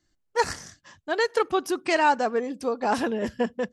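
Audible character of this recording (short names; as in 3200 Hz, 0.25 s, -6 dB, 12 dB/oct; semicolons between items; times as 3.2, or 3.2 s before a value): noise floor -74 dBFS; spectral tilt -3.5 dB/oct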